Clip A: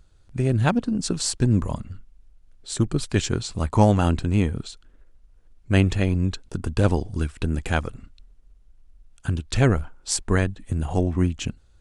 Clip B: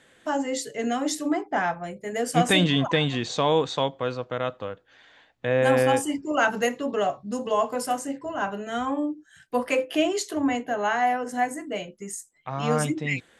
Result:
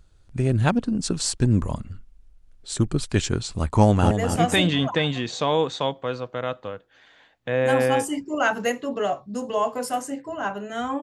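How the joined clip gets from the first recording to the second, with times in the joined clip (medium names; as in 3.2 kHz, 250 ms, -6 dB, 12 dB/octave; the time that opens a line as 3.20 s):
clip A
3.77–4.11 s: echo throw 250 ms, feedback 35%, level -7 dB
4.11 s: go over to clip B from 2.08 s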